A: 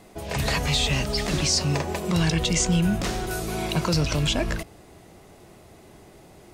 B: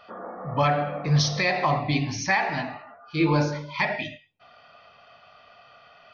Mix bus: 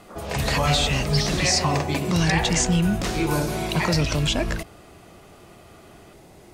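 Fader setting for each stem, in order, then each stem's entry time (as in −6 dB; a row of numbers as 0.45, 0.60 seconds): +1.0, −3.0 decibels; 0.00, 0.00 seconds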